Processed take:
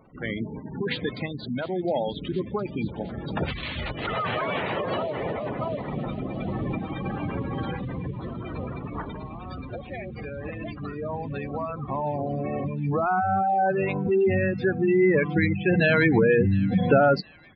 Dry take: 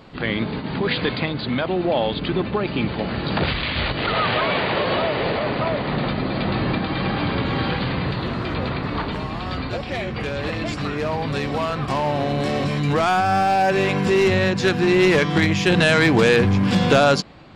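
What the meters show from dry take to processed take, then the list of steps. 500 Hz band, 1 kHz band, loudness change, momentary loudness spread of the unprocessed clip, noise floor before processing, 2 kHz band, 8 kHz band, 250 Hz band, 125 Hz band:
-4.5 dB, -6.0 dB, -5.5 dB, 10 LU, -29 dBFS, -7.0 dB, under -35 dB, -5.0 dB, -5.5 dB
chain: spectral gate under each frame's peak -15 dB strong; thin delay 0.712 s, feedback 71%, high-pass 2600 Hz, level -14.5 dB; downsampling 11025 Hz; upward expander 1.5:1, over -29 dBFS; gain -1.5 dB

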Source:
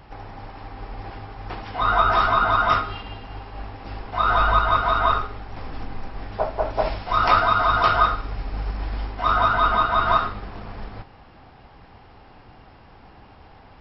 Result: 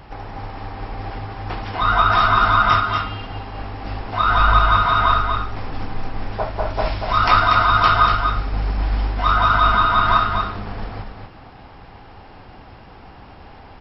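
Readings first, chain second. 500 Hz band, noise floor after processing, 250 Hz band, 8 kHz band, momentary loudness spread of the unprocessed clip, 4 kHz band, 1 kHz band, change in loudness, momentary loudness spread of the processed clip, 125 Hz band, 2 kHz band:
-0.5 dB, -42 dBFS, +4.5 dB, n/a, 20 LU, +6.0 dB, +3.5 dB, +3.5 dB, 17 LU, +7.0 dB, +4.5 dB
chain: dynamic EQ 560 Hz, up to -7 dB, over -34 dBFS, Q 0.8; on a send: echo 0.239 s -5.5 dB; on the sum: gain +5 dB

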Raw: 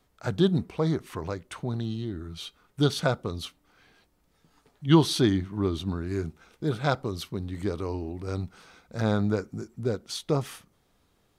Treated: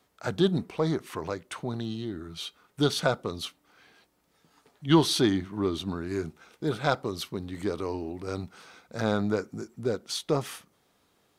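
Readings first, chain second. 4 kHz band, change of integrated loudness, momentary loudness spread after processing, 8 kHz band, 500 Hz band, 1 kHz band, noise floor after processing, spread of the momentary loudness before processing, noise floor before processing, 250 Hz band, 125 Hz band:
+1.5 dB, -1.0 dB, 14 LU, +2.0 dB, +0.5 dB, +1.0 dB, -69 dBFS, 15 LU, -68 dBFS, -1.5 dB, -4.5 dB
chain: HPF 240 Hz 6 dB/oct; in parallel at -10 dB: soft clip -25 dBFS, distortion -8 dB

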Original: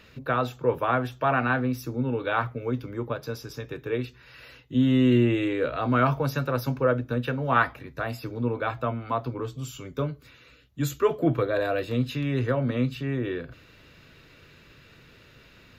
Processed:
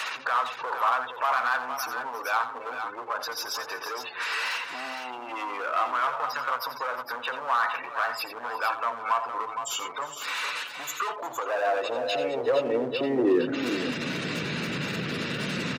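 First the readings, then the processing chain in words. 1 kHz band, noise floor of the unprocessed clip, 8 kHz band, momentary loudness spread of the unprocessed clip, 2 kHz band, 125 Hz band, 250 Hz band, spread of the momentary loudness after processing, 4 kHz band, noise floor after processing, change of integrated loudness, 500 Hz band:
+3.0 dB, -54 dBFS, +8.5 dB, 11 LU, +2.5 dB, under -10 dB, -7.0 dB, 8 LU, +7.5 dB, -40 dBFS, -2.0 dB, -2.0 dB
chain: zero-crossing step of -34 dBFS; spectral gate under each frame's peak -20 dB strong; HPF 66 Hz 12 dB/oct; in parallel at +1.5 dB: compressor, threshold -33 dBFS, peak gain reduction 16.5 dB; on the sum: limiter -17 dBFS, peak gain reduction 10.5 dB; hard clip -24 dBFS, distortion -11 dB; on a send: tapped delay 87/358/461/465 ms -11.5/-18.5/-8.5/-19.5 dB; on the sum: high-pass sweep 1000 Hz -> 180 Hz, 11.2–14.38

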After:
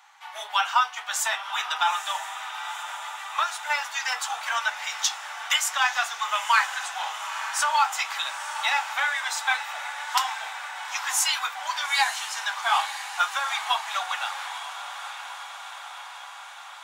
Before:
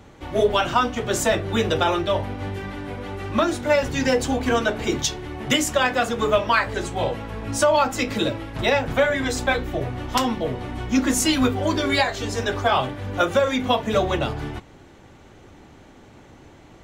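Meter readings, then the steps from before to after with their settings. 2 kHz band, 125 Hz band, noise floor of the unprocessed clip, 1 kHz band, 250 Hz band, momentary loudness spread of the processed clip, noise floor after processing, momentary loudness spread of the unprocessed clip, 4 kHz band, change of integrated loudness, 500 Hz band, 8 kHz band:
0.0 dB, under -40 dB, -48 dBFS, -1.0 dB, under -40 dB, 13 LU, -41 dBFS, 9 LU, 0.0 dB, -4.0 dB, -22.5 dB, +0.5 dB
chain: Chebyshev high-pass 810 Hz, order 5; diffused feedback echo 0.916 s, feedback 68%, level -10.5 dB

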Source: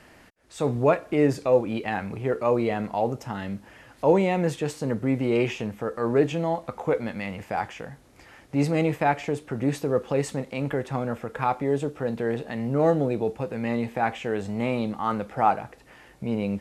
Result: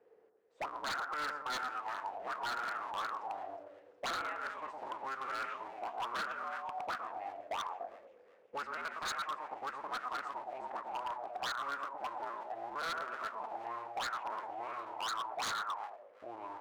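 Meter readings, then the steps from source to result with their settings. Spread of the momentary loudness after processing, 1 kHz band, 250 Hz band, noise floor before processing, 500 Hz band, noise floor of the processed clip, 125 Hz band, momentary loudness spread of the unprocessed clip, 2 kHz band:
7 LU, -8.0 dB, -30.0 dB, -53 dBFS, -22.0 dB, -63 dBFS, under -35 dB, 9 LU, -6.0 dB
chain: cycle switcher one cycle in 2, inverted; low shelf 460 Hz -7.5 dB; split-band echo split 1600 Hz, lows 0.112 s, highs 0.365 s, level -6 dB; auto-wah 440–1400 Hz, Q 8.8, up, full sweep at -22.5 dBFS; wavefolder -35 dBFS; gain +3.5 dB

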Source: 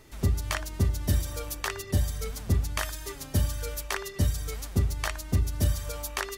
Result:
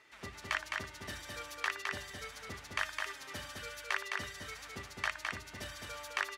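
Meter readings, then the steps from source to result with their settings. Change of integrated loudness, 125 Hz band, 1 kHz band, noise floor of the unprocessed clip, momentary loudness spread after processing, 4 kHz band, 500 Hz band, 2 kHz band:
-9.5 dB, -25.0 dB, -3.0 dB, -43 dBFS, 9 LU, -4.0 dB, -10.5 dB, +1.0 dB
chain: band-pass 1900 Hz, Q 1.1; on a send: echo 0.211 s -3.5 dB

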